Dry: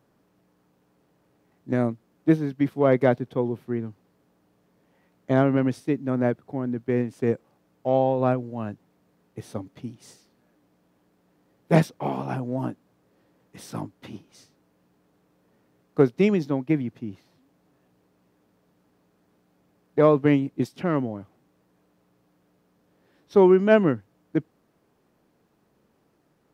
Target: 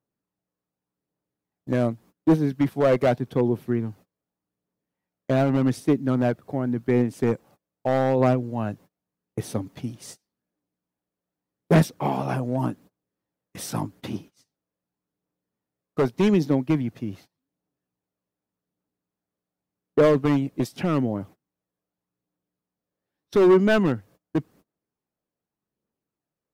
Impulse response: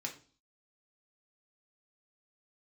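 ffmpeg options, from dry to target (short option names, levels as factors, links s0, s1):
-filter_complex "[0:a]agate=range=0.0398:threshold=0.00355:ratio=16:detection=peak,highshelf=f=6600:g=7,asplit=2[s0][s1];[s1]acompressor=threshold=0.0282:ratio=6,volume=0.944[s2];[s0][s2]amix=inputs=2:normalize=0,asoftclip=type=hard:threshold=0.188,aphaser=in_gain=1:out_gain=1:delay=1.9:decay=0.28:speed=0.85:type=triangular"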